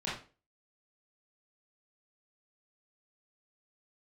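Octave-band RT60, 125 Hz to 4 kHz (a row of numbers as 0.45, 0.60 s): 0.40, 0.40, 0.40, 0.35, 0.30, 0.30 s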